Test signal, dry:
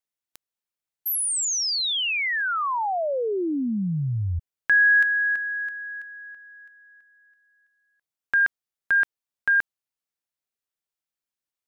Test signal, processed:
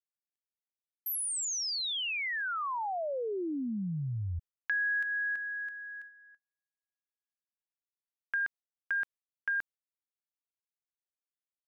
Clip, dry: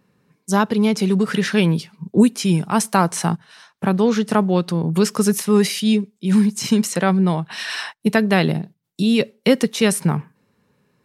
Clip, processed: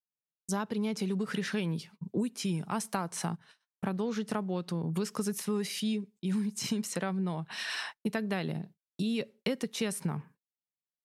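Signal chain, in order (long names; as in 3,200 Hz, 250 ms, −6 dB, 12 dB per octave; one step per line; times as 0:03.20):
noise gate −40 dBFS, range −43 dB
downward compressor 4 to 1, threshold −21 dBFS
level −8.5 dB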